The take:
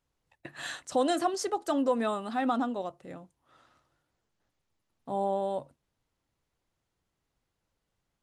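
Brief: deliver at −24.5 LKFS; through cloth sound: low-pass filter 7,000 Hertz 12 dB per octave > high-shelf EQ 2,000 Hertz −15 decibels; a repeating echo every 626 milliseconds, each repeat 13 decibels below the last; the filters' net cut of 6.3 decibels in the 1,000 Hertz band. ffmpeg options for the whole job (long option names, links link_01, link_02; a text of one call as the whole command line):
ffmpeg -i in.wav -af "lowpass=7000,equalizer=frequency=1000:width_type=o:gain=-6,highshelf=frequency=2000:gain=-15,aecho=1:1:626|1252|1878:0.224|0.0493|0.0108,volume=9.5dB" out.wav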